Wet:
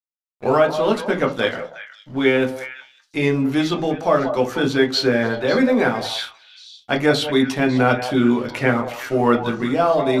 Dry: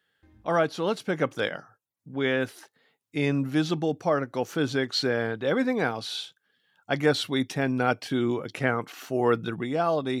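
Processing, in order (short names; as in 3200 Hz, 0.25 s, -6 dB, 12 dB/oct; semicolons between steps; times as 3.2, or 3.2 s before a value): tape start at the beginning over 0.63 s; HPF 240 Hz 6 dB/oct; in parallel at -2 dB: compressor, threshold -38 dBFS, peak gain reduction 18.5 dB; on the sum: crossover distortion -48.5 dBFS; delay with a stepping band-pass 0.183 s, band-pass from 730 Hz, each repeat 1.4 oct, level -7 dB; on a send at -1 dB: reverb RT60 0.25 s, pre-delay 8 ms; on the sum: gain +4.5 dB; MP2 192 kbps 48000 Hz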